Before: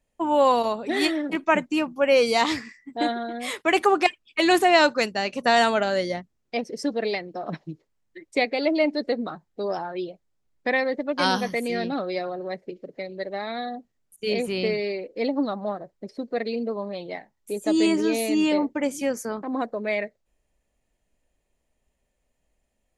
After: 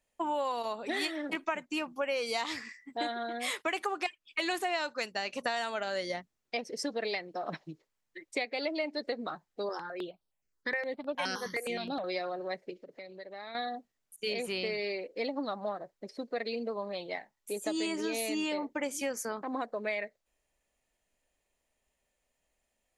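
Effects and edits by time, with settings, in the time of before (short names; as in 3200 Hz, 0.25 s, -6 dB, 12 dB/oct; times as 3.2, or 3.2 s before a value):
9.69–12.04 step phaser 9.6 Hz 670–7000 Hz
12.76–13.55 compressor 4:1, threshold -39 dBFS
whole clip: low shelf 420 Hz -11.5 dB; compressor 6:1, threshold -30 dBFS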